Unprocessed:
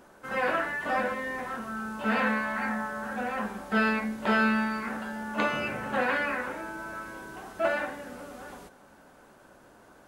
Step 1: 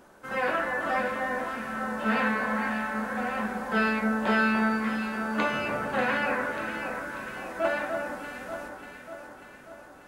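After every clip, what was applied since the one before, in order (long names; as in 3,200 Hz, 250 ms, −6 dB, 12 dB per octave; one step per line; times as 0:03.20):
delay that swaps between a low-pass and a high-pass 295 ms, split 1,600 Hz, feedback 75%, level −5 dB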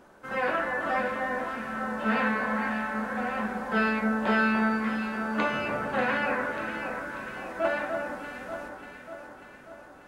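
high-shelf EQ 5,900 Hz −7 dB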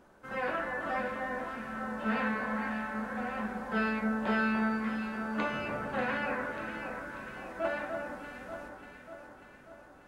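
low-shelf EQ 150 Hz +6 dB
level −6 dB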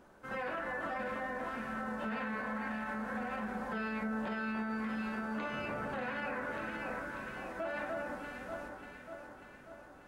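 brickwall limiter −30 dBFS, peak gain reduction 10.5 dB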